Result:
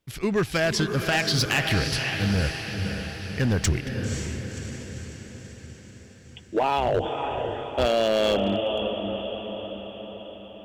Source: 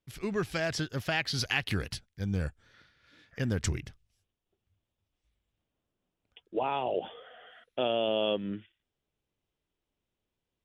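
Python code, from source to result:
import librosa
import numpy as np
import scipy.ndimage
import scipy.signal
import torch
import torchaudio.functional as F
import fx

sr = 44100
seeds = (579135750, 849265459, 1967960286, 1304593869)

y = fx.octave_divider(x, sr, octaves=2, level_db=0.0, at=(6.77, 7.86))
y = fx.echo_diffused(y, sr, ms=533, feedback_pct=57, wet_db=-6.5)
y = np.clip(y, -10.0 ** (-25.0 / 20.0), 10.0 ** (-25.0 / 20.0))
y = y * 10.0 ** (8.5 / 20.0)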